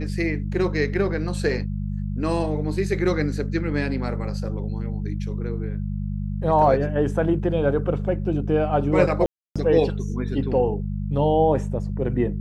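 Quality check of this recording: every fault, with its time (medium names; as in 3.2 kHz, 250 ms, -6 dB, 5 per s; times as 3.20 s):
hum 50 Hz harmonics 4 -27 dBFS
9.26–9.56 s: dropout 296 ms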